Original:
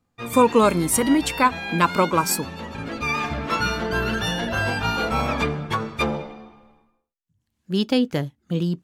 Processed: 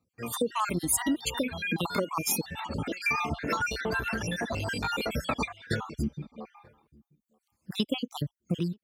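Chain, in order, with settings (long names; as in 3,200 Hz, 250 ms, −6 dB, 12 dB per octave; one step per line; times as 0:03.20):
time-frequency cells dropped at random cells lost 53%
automatic gain control gain up to 8.5 dB
0:05.95–0:06.38: drawn EQ curve 300 Hz 0 dB, 580 Hz −29 dB, 6,100 Hz −8 dB
downward compressor 4 to 1, threshold −22 dBFS, peak gain reduction 12 dB
reverb reduction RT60 1.4 s
high-pass filter 44 Hz 24 dB per octave
high-shelf EQ 7,700 Hz +5.5 dB
slap from a distant wall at 160 metres, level −28 dB
0:03.43–0:05.07: saturating transformer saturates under 430 Hz
level −4 dB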